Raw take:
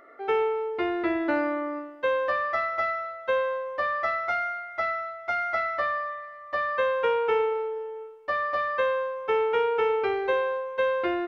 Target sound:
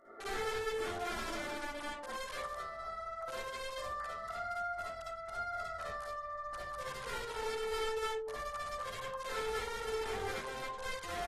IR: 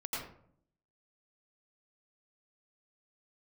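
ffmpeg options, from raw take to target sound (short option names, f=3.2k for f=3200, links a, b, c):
-filter_complex "[0:a]asubboost=boost=11.5:cutoff=86,flanger=delay=17.5:depth=6.9:speed=0.76,asettb=1/sr,asplit=3[a][b][c];[a]atrim=end=7.974[d];[b]atrim=start=7.97:end=10.5,asetpts=PTS-STARTPTS,afade=t=in:d=0.004:c=qsin,afade=t=out:st=2.526:d=0.004:c=qsin,lowpass=4.9k[e];[c]atrim=start=10.496[f];[d][e]acrossfade=d=0.004:c1=hsin:c2=qsin[g];[g][f]acrossfade=d=0.004:c1=qsin:c2=hsin,aecho=1:1:72.89|207:0.316|0.355,acompressor=threshold=-39dB:ratio=12,asoftclip=type=hard:threshold=-38.5dB,equalizer=f=2.4k:t=o:w=1.2:g=-14,bandreject=f=60:t=h:w=6,bandreject=f=120:t=h:w=6,bandreject=f=180:t=h:w=6,bandreject=f=240:t=h:w=6,bandreject=f=300:t=h:w=6,bandreject=f=360:t=h:w=6,bandreject=f=420:t=h:w=6,bandreject=f=480:t=h:w=6,bandreject=f=540:t=h:w=6,aeval=exprs='(mod(94.4*val(0)+1,2)-1)/94.4':c=same[h];[1:a]atrim=start_sample=2205,afade=t=out:st=0.29:d=0.01,atrim=end_sample=13230,asetrate=70560,aresample=44100[i];[h][i]afir=irnorm=-1:irlink=0,volume=5dB" -ar 44100 -c:a aac -b:a 32k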